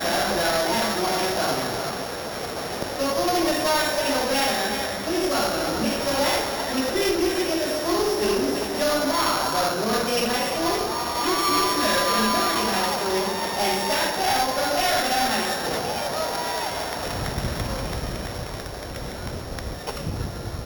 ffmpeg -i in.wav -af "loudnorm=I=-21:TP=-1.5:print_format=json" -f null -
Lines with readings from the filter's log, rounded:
"input_i" : "-24.0",
"input_tp" : "-13.2",
"input_lra" : "9.8",
"input_thresh" : "-34.0",